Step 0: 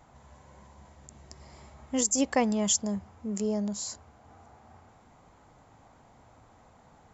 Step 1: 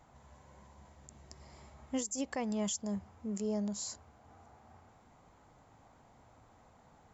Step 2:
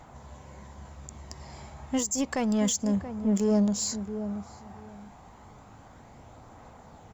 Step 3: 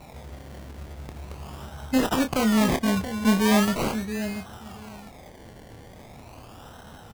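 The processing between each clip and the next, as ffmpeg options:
-af "alimiter=limit=-22dB:level=0:latency=1:release=184,volume=-4.5dB"
-filter_complex "[0:a]asplit=2[a][b];[b]asoftclip=type=hard:threshold=-38.5dB,volume=-4dB[c];[a][c]amix=inputs=2:normalize=0,aphaser=in_gain=1:out_gain=1:delay=1.3:decay=0.22:speed=0.3:type=triangular,asplit=2[d][e];[e]adelay=679,lowpass=f=850:p=1,volume=-9dB,asplit=2[f][g];[g]adelay=679,lowpass=f=850:p=1,volume=0.2,asplit=2[h][i];[i]adelay=679,lowpass=f=850:p=1,volume=0.2[j];[d][f][h][j]amix=inputs=4:normalize=0,volume=6dB"
-filter_complex "[0:a]acrusher=samples=27:mix=1:aa=0.000001:lfo=1:lforange=16.2:lforate=0.4,asplit=2[a][b];[b]adelay=27,volume=-8dB[c];[a][c]amix=inputs=2:normalize=0,volume=4.5dB"

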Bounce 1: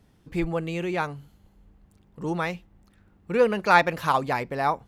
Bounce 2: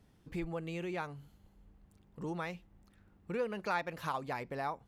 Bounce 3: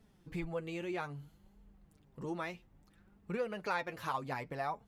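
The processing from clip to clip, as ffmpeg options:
-af "acompressor=threshold=-34dB:ratio=2,volume=-5.5dB"
-af "flanger=delay=4.4:depth=4.9:regen=33:speed=0.62:shape=triangular,volume=3.5dB"

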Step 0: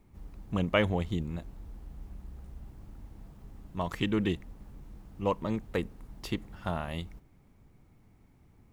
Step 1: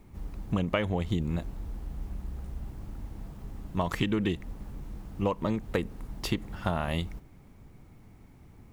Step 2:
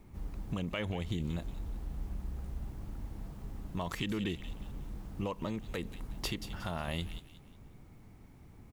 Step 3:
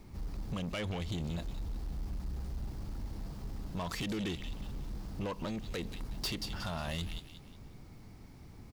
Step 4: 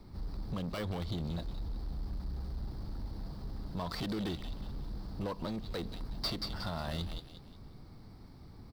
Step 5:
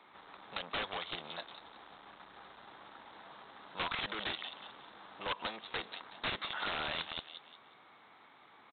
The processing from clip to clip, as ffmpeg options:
-af "acompressor=threshold=-31dB:ratio=12,volume=7.5dB"
-filter_complex "[0:a]acrossover=split=2500[a][b];[a]alimiter=level_in=1dB:limit=-24dB:level=0:latency=1:release=105,volume=-1dB[c];[b]aecho=1:1:181|362|543|724:0.398|0.135|0.046|0.0156[d];[c][d]amix=inputs=2:normalize=0,volume=-2dB"
-af "equalizer=f=4.8k:t=o:w=0.69:g=9,asoftclip=type=tanh:threshold=-34.5dB,volume=3dB"
-filter_complex "[0:a]highshelf=f=5.5k:t=q:w=3:g=-6.5,acrossover=split=330|1900|3400[a][b][c][d];[c]acrusher=samples=13:mix=1:aa=0.000001[e];[a][b][e][d]amix=inputs=4:normalize=0"
-af "highpass=1.1k,aresample=8000,aeval=exprs='(mod(89.1*val(0)+1,2)-1)/89.1':c=same,aresample=44100,volume=10.5dB"

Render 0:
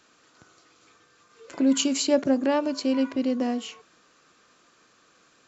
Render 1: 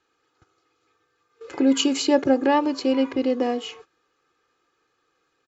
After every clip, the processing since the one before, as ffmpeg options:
-af "aemphasis=mode=reproduction:type=50fm,agate=range=-15dB:threshold=-51dB:ratio=16:detection=peak,aecho=1:1:2.4:0.69,volume=4dB"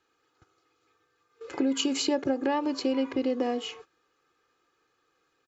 -af "acompressor=threshold=-21dB:ratio=6,volume=-2dB"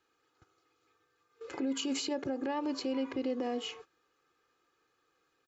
-af "alimiter=limit=-23dB:level=0:latency=1:release=69,volume=-3dB"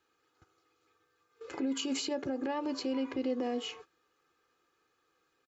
-filter_complex "[0:a]asplit=2[a][b];[b]adelay=12,volume=-13.5dB[c];[a][c]amix=inputs=2:normalize=0"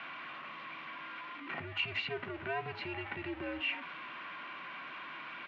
-af "aeval=exprs='val(0)+0.5*0.0106*sgn(val(0))':c=same,aderivative,highpass=f=300:t=q:w=0.5412,highpass=f=300:t=q:w=1.307,lowpass=f=2.8k:t=q:w=0.5176,lowpass=f=2.8k:t=q:w=0.7071,lowpass=f=2.8k:t=q:w=1.932,afreqshift=-170,volume=16dB"

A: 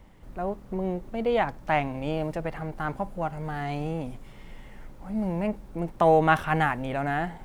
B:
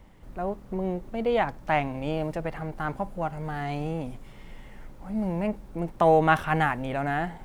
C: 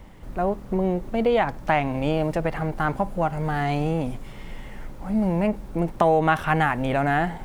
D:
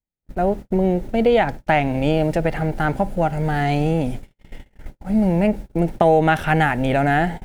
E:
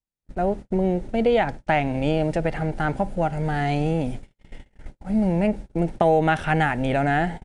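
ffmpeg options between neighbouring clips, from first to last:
-af anull
-af "acompressor=threshold=-25dB:ratio=3,volume=7.5dB"
-af "equalizer=f=1.1k:t=o:w=0.3:g=-14,agate=range=-52dB:threshold=-32dB:ratio=16:detection=peak,volume=5dB"
-af "aresample=22050,aresample=44100,volume=-3.5dB"

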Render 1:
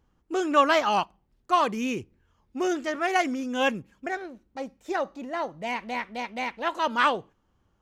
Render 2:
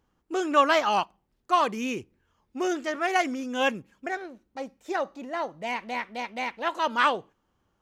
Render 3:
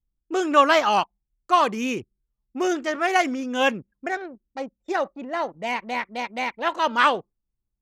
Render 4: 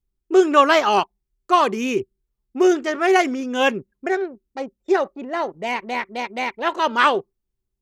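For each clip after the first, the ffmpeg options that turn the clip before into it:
-af "lowshelf=f=150:g=-8"
-af "anlmdn=0.0398,volume=4dB"
-af "equalizer=f=390:w=6.7:g=12.5,volume=2dB"

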